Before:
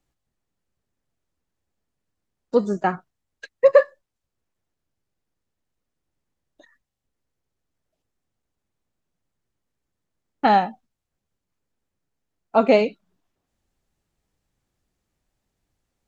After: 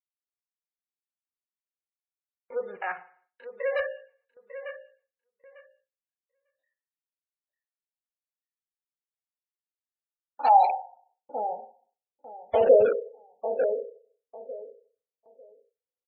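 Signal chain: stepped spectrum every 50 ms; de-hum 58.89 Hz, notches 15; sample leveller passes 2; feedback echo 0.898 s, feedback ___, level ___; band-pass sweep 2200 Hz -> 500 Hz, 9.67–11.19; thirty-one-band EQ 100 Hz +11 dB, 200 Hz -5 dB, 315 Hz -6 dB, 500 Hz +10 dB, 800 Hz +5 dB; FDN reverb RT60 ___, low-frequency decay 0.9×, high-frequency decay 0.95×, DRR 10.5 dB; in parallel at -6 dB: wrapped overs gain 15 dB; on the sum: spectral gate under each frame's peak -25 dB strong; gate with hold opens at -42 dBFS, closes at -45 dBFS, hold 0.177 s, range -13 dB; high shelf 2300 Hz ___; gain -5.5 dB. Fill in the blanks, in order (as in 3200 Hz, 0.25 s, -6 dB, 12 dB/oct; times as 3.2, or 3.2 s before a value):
20%, -11.5 dB, 0.58 s, -3 dB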